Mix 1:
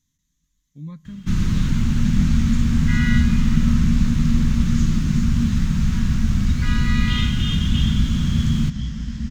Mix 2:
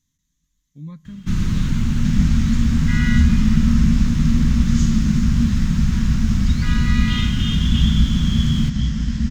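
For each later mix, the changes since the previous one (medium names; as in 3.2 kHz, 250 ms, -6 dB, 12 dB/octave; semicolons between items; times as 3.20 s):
second sound +6.5 dB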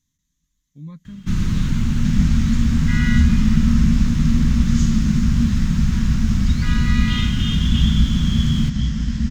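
reverb: off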